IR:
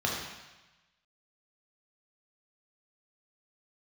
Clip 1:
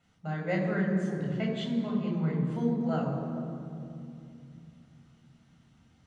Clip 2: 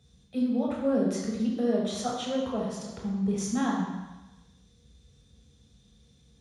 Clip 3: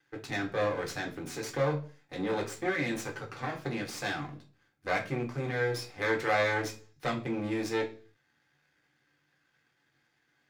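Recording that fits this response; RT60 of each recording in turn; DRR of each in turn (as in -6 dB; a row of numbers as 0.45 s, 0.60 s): 2; 2.7 s, 1.1 s, 0.40 s; -1.0 dB, -3.0 dB, -0.5 dB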